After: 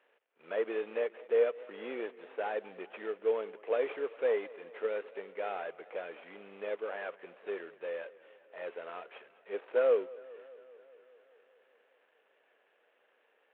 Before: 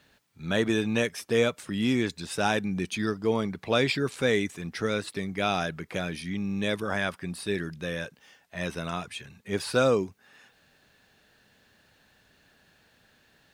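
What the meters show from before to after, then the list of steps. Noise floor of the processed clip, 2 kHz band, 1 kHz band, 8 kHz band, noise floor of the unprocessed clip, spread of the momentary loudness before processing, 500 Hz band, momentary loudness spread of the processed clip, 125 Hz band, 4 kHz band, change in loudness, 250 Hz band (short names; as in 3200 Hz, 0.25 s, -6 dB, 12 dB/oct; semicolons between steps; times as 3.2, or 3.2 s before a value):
-72 dBFS, -12.5 dB, -9.5 dB, under -40 dB, -64 dBFS, 10 LU, -3.0 dB, 19 LU, under -35 dB, -21.5 dB, -7.0 dB, -20.0 dB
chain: CVSD 16 kbps; ladder high-pass 420 Hz, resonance 60%; warbling echo 0.203 s, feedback 70%, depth 92 cents, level -21 dB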